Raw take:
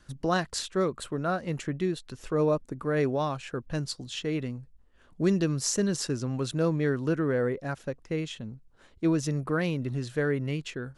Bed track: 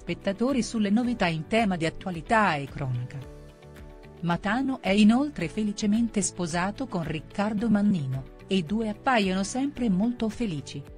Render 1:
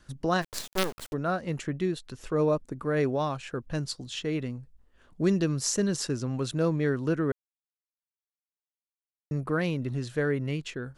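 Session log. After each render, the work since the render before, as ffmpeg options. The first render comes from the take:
-filter_complex "[0:a]asplit=3[s0][s1][s2];[s0]afade=t=out:st=0.41:d=0.02[s3];[s1]acrusher=bits=4:dc=4:mix=0:aa=0.000001,afade=t=in:st=0.41:d=0.02,afade=t=out:st=1.12:d=0.02[s4];[s2]afade=t=in:st=1.12:d=0.02[s5];[s3][s4][s5]amix=inputs=3:normalize=0,asplit=3[s6][s7][s8];[s6]atrim=end=7.32,asetpts=PTS-STARTPTS,afade=t=out:st=7.316:d=0.004:c=hsin[s9];[s7]atrim=start=7.32:end=9.31,asetpts=PTS-STARTPTS,volume=0[s10];[s8]atrim=start=9.31,asetpts=PTS-STARTPTS,afade=t=in:d=0.004:c=hsin[s11];[s9][s10][s11]concat=n=3:v=0:a=1"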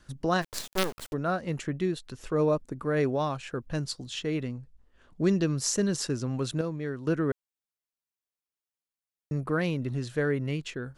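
-filter_complex "[0:a]asettb=1/sr,asplit=3[s0][s1][s2];[s0]atrim=end=4.464[s3];[s1]atrim=start=4.46:end=5.57,asetpts=PTS-STARTPTS,afade=t=in:d=0.004:c=qsin,afade=t=out:st=1.106:d=0.004:c=qsin,lowpass=8700[s4];[s2]atrim=start=5.566[s5];[s3][s4]acrossfade=d=0.004:c1=hsin:c2=qsin[s6];[s6][s5]acrossfade=d=0.004:c1=qsin:c2=hsin,asplit=3[s7][s8][s9];[s7]atrim=end=6.612[s10];[s8]atrim=start=6.608:end=7.072,asetpts=PTS-STARTPTS,volume=0.447[s11];[s9]atrim=start=7.068[s12];[s10][s11]acrossfade=d=0.004:c1=hsin:c2=hsin[s13];[s13][s12]acrossfade=d=0.004:c1=hsin:c2=hsin"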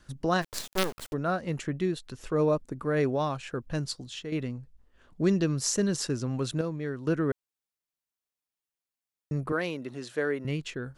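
-filter_complex "[0:a]asettb=1/sr,asplit=3[s0][s1][s2];[s0]atrim=end=9.524[s3];[s1]atrim=start=9.52:end=10.45,asetpts=PTS-STARTPTS,afade=t=in:d=0.004:c=qsin,afade=t=out:st=0.926:d=0.004:c=qsin,highpass=300[s4];[s2]atrim=start=10.446[s5];[s3][s4]acrossfade=d=0.004:c1=hsin:c2=qsin[s6];[s6][s5]acrossfade=d=0.004:c1=qsin:c2=hsin,asplit=2[s7][s8];[s7]atrim=end=4.32,asetpts=PTS-STARTPTS,afade=t=out:st=3.91:d=0.41:silence=0.398107[s9];[s8]atrim=start=4.32,asetpts=PTS-STARTPTS,afade=t=in:d=0.004:c=hsin:silence=0.398107[s10];[s9][s10]concat=n=2:v=0:a=1"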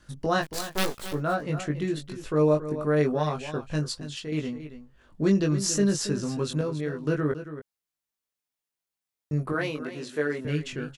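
-filter_complex "[0:a]asplit=2[s0][s1];[s1]adelay=20,volume=0.708[s2];[s0][s2]amix=inputs=2:normalize=0,asplit=2[s3][s4];[s4]aecho=0:1:277:0.251[s5];[s3][s5]amix=inputs=2:normalize=0"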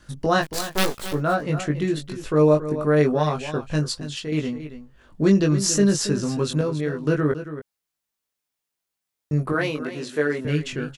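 -af "volume=1.78"

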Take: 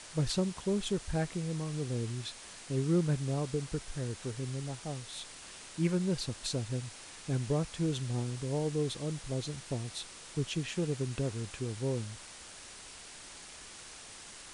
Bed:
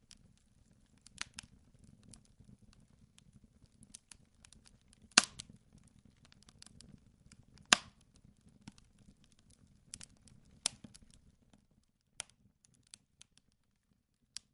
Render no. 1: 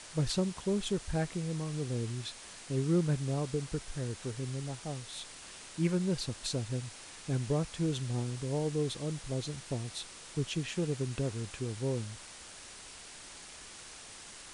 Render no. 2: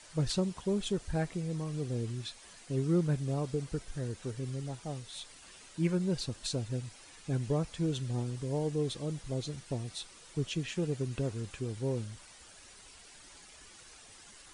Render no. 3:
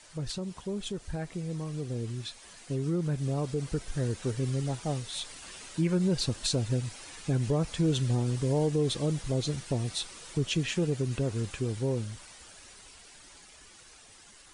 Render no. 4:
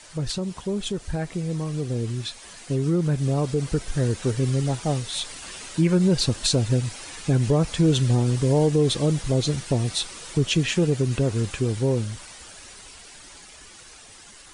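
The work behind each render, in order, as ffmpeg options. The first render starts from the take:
-af anull
-af "afftdn=nr=9:nf=-50"
-af "alimiter=level_in=1.33:limit=0.0631:level=0:latency=1:release=113,volume=0.75,dynaudnorm=f=590:g=11:m=2.51"
-af "volume=2.37"

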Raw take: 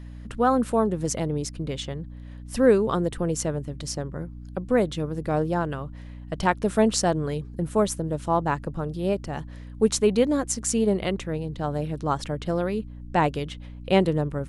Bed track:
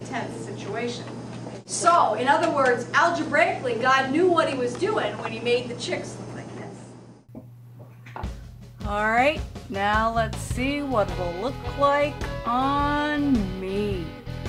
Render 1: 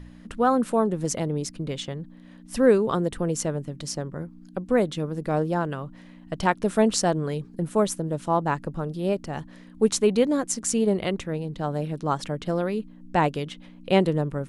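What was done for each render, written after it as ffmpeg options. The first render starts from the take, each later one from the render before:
-af "bandreject=f=60:t=h:w=4,bandreject=f=120:t=h:w=4"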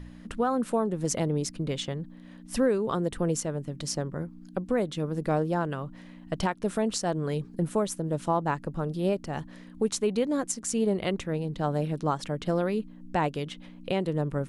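-af "alimiter=limit=0.158:level=0:latency=1:release=401"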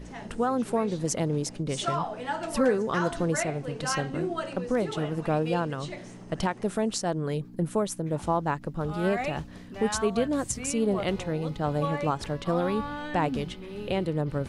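-filter_complex "[1:a]volume=0.251[s0];[0:a][s0]amix=inputs=2:normalize=0"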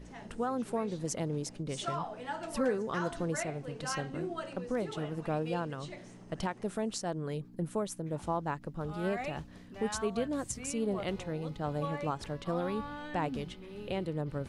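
-af "volume=0.447"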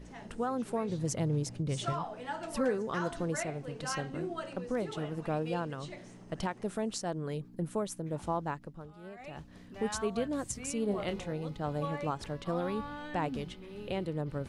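-filter_complex "[0:a]asettb=1/sr,asplit=3[s0][s1][s2];[s0]atrim=end=0.894[s3];[s1]atrim=start=0.89:end=1.93,asetpts=PTS-STARTPTS,afade=t=in:d=0.004:c=qsin,afade=t=out:st=1.036:d=0.004:c=qsin,equalizer=f=110:t=o:w=0.77:g=14[s4];[s2]atrim=start=1.926[s5];[s3][s4]acrossfade=d=0.004:c1=hsin:c2=qsin[s6];[s6][s5]acrossfade=d=0.004:c1=qsin:c2=hsin,asettb=1/sr,asplit=3[s7][s8][s9];[s7]atrim=end=10.864[s10];[s8]atrim=start=10.86:end=11.33,asetpts=PTS-STARTPTS,afade=t=in:d=0.004:c=qsin,afade=t=out:st=0.466:d=0.004:c=qsin,asplit=2[s11][s12];[s12]adelay=29,volume=0.376[s13];[s11][s13]amix=inputs=2:normalize=0,atrim=end_sample=20727[s14];[s9]atrim=start=11.326[s15];[s10][s14]acrossfade=d=0.004:c1=hsin:c2=qsin[s16];[s16][s15]acrossfade=d=0.004:c1=qsin:c2=hsin,asplit=3[s17][s18][s19];[s17]atrim=end=8.92,asetpts=PTS-STARTPTS,afade=t=out:st=8.43:d=0.49:silence=0.188365[s20];[s18]atrim=start=8.92:end=9.16,asetpts=PTS-STARTPTS,volume=0.188[s21];[s19]atrim=start=9.16,asetpts=PTS-STARTPTS,afade=t=in:d=0.49:silence=0.188365[s22];[s20][s21][s22]concat=n=3:v=0:a=1"

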